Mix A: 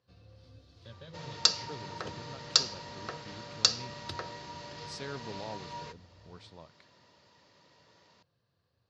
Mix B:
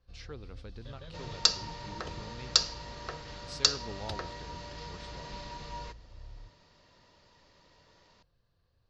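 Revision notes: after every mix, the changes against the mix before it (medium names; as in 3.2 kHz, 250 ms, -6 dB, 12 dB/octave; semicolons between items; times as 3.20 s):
speech: entry -1.40 s; master: remove high-pass 95 Hz 24 dB/octave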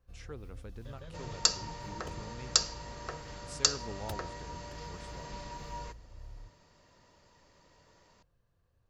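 second sound: add peaking EQ 4.6 kHz +7 dB 0.31 oct; master: remove resonant low-pass 4.5 kHz, resonance Q 3.2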